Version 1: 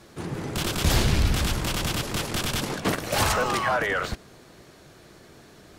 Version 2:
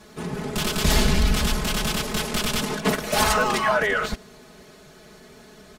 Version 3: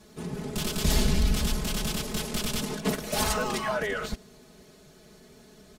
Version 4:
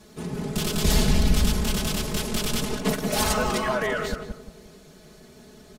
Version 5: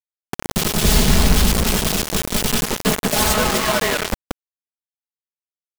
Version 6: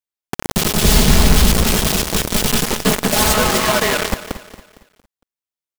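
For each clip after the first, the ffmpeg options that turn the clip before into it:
ffmpeg -i in.wav -af "aecho=1:1:4.7:0.95" out.wav
ffmpeg -i in.wav -af "equalizer=frequency=1400:width_type=o:width=2.5:gain=-6.5,volume=-3.5dB" out.wav
ffmpeg -i in.wav -filter_complex "[0:a]asplit=2[link_01][link_02];[link_02]adelay=175,lowpass=frequency=1100:poles=1,volume=-4dB,asplit=2[link_03][link_04];[link_04]adelay=175,lowpass=frequency=1100:poles=1,volume=0.36,asplit=2[link_05][link_06];[link_06]adelay=175,lowpass=frequency=1100:poles=1,volume=0.36,asplit=2[link_07][link_08];[link_08]adelay=175,lowpass=frequency=1100:poles=1,volume=0.36,asplit=2[link_09][link_10];[link_10]adelay=175,lowpass=frequency=1100:poles=1,volume=0.36[link_11];[link_01][link_03][link_05][link_07][link_09][link_11]amix=inputs=6:normalize=0,volume=3dB" out.wav
ffmpeg -i in.wav -af "acrusher=bits=3:mix=0:aa=0.000001,volume=5dB" out.wav
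ffmpeg -i in.wav -af "aecho=1:1:229|458|687|916:0.2|0.0778|0.0303|0.0118,volume=2.5dB" out.wav

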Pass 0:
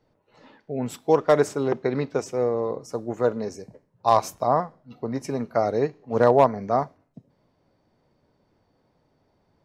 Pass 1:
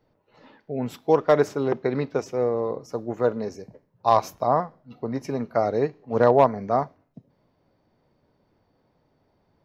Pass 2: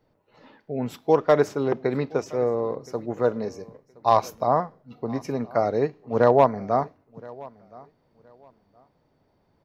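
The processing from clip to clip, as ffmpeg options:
ffmpeg -i in.wav -af "equalizer=frequency=8600:width_type=o:width=0.59:gain=-13.5" out.wav
ffmpeg -i in.wav -af "aecho=1:1:1020|2040:0.075|0.0165" out.wav

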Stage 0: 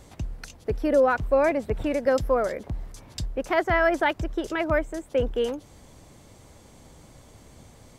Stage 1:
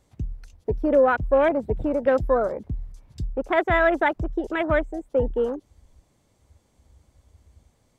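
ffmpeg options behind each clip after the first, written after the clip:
ffmpeg -i in.wav -af "afwtdn=0.0251,volume=2dB" out.wav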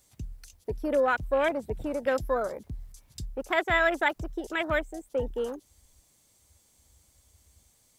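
ffmpeg -i in.wav -af "crystalizer=i=7.5:c=0,volume=-8.5dB" out.wav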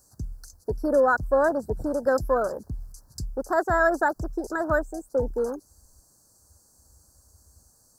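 ffmpeg -i in.wav -af "asuperstop=centerf=2700:order=12:qfactor=1,volume=4.5dB" out.wav

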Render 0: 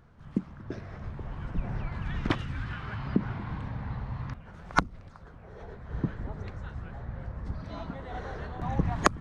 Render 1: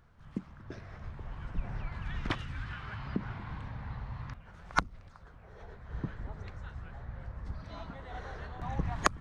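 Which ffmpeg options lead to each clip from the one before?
ffmpeg -i in.wav -af "equalizer=frequency=260:width_type=o:width=2.9:gain=-6.5,volume=-2dB" out.wav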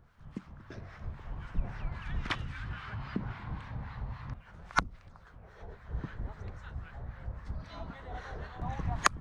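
ffmpeg -i in.wav -filter_complex "[0:a]acrossover=split=930[link_01][link_02];[link_01]aeval=exprs='val(0)*(1-0.7/2+0.7/2*cos(2*PI*3.7*n/s))':channel_layout=same[link_03];[link_02]aeval=exprs='val(0)*(1-0.7/2-0.7/2*cos(2*PI*3.7*n/s))':channel_layout=same[link_04];[link_03][link_04]amix=inputs=2:normalize=0,volume=3.5dB" out.wav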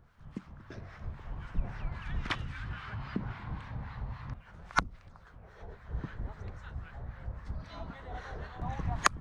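ffmpeg -i in.wav -af anull out.wav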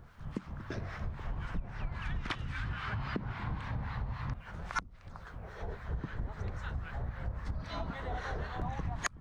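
ffmpeg -i in.wav -af "acompressor=threshold=-40dB:ratio=8,volume=7.5dB" out.wav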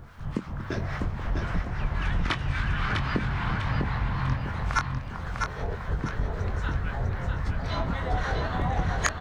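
ffmpeg -i in.wav -filter_complex "[0:a]asplit=2[link_01][link_02];[link_02]adelay=23,volume=-8dB[link_03];[link_01][link_03]amix=inputs=2:normalize=0,asplit=2[link_04][link_05];[link_05]aecho=0:1:650|1300|1950|2600|3250:0.631|0.233|0.0864|0.032|0.0118[link_06];[link_04][link_06]amix=inputs=2:normalize=0,volume=8dB" out.wav

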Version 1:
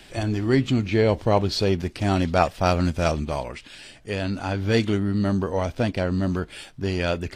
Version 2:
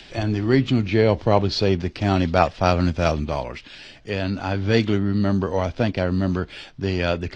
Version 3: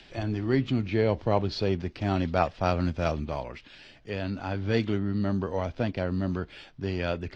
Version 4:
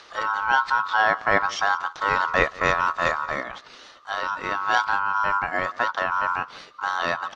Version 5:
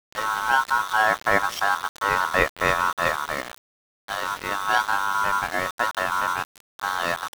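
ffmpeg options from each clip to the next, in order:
ffmpeg -i in.wav -filter_complex "[0:a]lowpass=frequency=5800:width=0.5412,lowpass=frequency=5800:width=1.3066,acrossover=split=130|2400[link_01][link_02][link_03];[link_03]acompressor=mode=upward:threshold=-45dB:ratio=2.5[link_04];[link_01][link_02][link_04]amix=inputs=3:normalize=0,volume=2dB" out.wav
ffmpeg -i in.wav -af "highshelf=frequency=4900:gain=-7,volume=-7dB" out.wav
ffmpeg -i in.wav -af "aeval=exprs='val(0)*sin(2*PI*1200*n/s)':channel_layout=same,aecho=1:1:178:0.0841,volume=7dB" out.wav
ffmpeg -i in.wav -af "aeval=exprs='val(0)*gte(abs(val(0)),0.0376)':channel_layout=same" out.wav

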